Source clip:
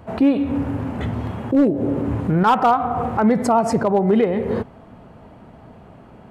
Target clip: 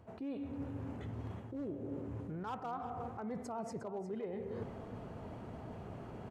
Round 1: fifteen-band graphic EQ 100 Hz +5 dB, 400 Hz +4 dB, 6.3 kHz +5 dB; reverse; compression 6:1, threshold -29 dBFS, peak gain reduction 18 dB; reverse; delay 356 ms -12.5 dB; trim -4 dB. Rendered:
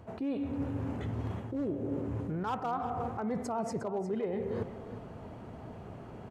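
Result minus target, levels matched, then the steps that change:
compression: peak gain reduction -7.5 dB
change: compression 6:1, threshold -38 dBFS, peak gain reduction 25.5 dB

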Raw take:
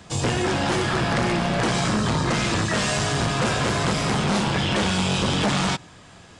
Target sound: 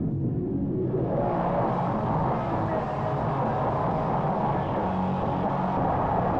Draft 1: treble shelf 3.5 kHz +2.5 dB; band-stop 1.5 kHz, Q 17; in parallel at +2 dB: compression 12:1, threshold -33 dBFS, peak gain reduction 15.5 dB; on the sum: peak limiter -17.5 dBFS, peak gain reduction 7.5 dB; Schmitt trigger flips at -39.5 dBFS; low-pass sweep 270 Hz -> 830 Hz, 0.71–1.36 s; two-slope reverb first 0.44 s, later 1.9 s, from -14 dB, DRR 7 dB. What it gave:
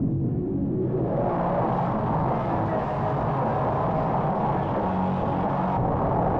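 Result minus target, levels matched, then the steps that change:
compression: peak gain reduction +8 dB; 8 kHz band -3.5 dB
change: treble shelf 3.5 kHz +10 dB; change: compression 12:1, threshold -23 dBFS, peak gain reduction 7.5 dB

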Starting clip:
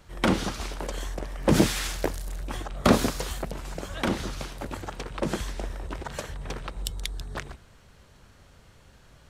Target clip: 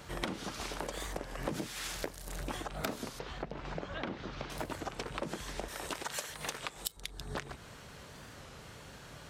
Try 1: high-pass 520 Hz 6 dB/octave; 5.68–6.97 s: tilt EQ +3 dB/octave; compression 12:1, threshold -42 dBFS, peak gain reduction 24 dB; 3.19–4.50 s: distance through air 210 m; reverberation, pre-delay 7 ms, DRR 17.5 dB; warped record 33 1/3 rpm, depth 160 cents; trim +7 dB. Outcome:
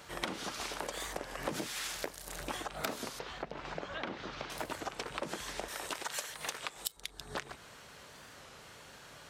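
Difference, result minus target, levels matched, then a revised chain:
125 Hz band -7.5 dB
high-pass 140 Hz 6 dB/octave; 5.68–6.97 s: tilt EQ +3 dB/octave; compression 12:1, threshold -42 dBFS, peak gain reduction 27.5 dB; 3.19–4.50 s: distance through air 210 m; reverberation, pre-delay 7 ms, DRR 17.5 dB; warped record 33 1/3 rpm, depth 160 cents; trim +7 dB

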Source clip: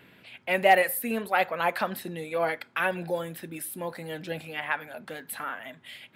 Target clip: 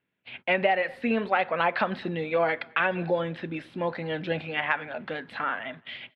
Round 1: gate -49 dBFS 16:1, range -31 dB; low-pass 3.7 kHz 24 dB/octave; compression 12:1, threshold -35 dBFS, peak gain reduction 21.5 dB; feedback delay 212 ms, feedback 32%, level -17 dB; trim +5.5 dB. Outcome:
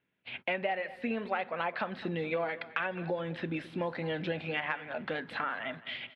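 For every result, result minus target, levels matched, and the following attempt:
compression: peak gain reduction +9 dB; echo-to-direct +11 dB
gate -49 dBFS 16:1, range -31 dB; low-pass 3.7 kHz 24 dB/octave; compression 12:1, threshold -25 dBFS, peak gain reduction 12.5 dB; feedback delay 212 ms, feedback 32%, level -17 dB; trim +5.5 dB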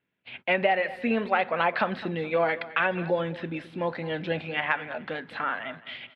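echo-to-direct +11 dB
gate -49 dBFS 16:1, range -31 dB; low-pass 3.7 kHz 24 dB/octave; compression 12:1, threshold -25 dBFS, peak gain reduction 12.5 dB; feedback delay 212 ms, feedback 32%, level -28 dB; trim +5.5 dB

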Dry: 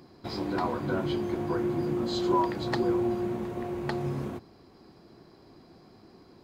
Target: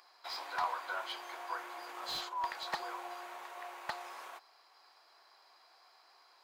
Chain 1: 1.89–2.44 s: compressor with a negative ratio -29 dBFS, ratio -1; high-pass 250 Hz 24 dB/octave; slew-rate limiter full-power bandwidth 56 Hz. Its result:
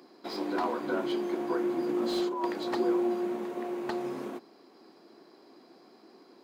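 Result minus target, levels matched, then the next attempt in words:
250 Hz band +20.0 dB
1.89–2.44 s: compressor with a negative ratio -29 dBFS, ratio -1; high-pass 820 Hz 24 dB/octave; slew-rate limiter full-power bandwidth 56 Hz

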